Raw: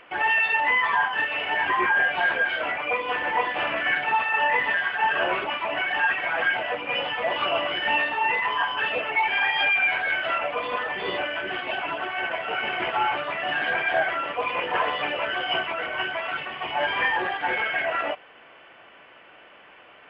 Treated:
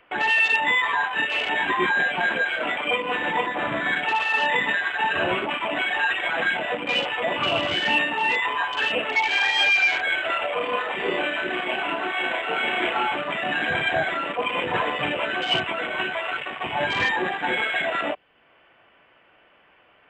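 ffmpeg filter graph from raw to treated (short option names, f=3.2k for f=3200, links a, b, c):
-filter_complex "[0:a]asettb=1/sr,asplit=3[a][b][c];[a]atrim=end=3.464[d];[b]atrim=start=3.46:end=3.96,asetpts=PTS-STARTPTS,afade=t=in:d=0.004:c=qsin,afade=t=out:st=0.496:d=0.004:c=qsin,lowpass=f=2.1k:w=0.5412,lowpass=f=2.1k:w=1.3066,aeval=exprs='val(0)+0.0141*sin(2*PI*1000*n/s)':c=same[e];[c]atrim=start=3.956[f];[d][e]acrossfade=d=0.004:c1=hsin:c2=qsin[g];[g][f]acrossfade=d=0.004:c1=qsin:c2=hsin,asettb=1/sr,asplit=3[h][i][j];[h]atrim=end=10.464[k];[i]atrim=start=10.46:end=13.03,asetpts=PTS-STARTPTS,afade=t=in:d=0.004:c=qsin,afade=t=out:st=2.566:d=0.004:c=qsin,equalizer=f=140:t=o:w=0.81:g=-15,asplit=2[l][m];[m]adelay=33,volume=-3dB[n];[l][n]amix=inputs=2:normalize=0,atrim=end_sample=113337[o];[j]atrim=start=13.026[p];[k][o]acrossfade=d=0.004:c1=hsin:c2=qsin[q];[q][p]acrossfade=d=0.004:c1=qsin:c2=hsin,afwtdn=0.0251,lowshelf=f=130:g=9,acrossover=split=320|3000[r][s][t];[s]acompressor=threshold=-52dB:ratio=1.5[u];[r][u][t]amix=inputs=3:normalize=0,volume=9dB"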